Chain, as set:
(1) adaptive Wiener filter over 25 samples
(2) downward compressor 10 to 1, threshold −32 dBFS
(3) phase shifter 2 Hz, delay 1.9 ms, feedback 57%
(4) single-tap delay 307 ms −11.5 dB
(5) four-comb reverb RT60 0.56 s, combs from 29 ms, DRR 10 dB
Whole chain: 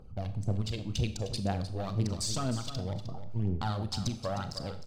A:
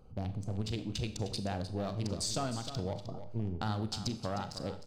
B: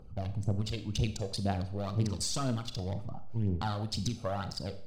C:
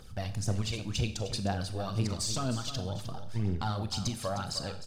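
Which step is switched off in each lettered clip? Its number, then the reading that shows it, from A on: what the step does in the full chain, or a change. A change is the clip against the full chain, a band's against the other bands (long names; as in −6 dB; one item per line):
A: 3, 125 Hz band −3.0 dB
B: 4, echo-to-direct ratio −7.5 dB to −10.0 dB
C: 1, 2 kHz band +2.5 dB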